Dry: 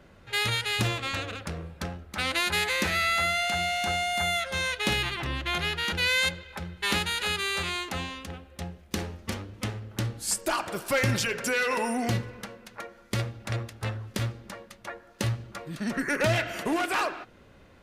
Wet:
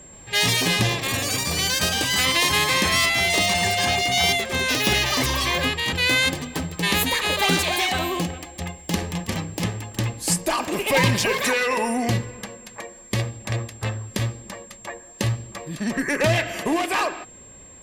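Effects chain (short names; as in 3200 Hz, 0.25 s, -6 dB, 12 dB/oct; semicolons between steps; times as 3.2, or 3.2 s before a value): echoes that change speed 0.128 s, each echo +7 st, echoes 3; whine 7500 Hz -49 dBFS; Butterworth band-stop 1400 Hz, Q 6.8; gain +5 dB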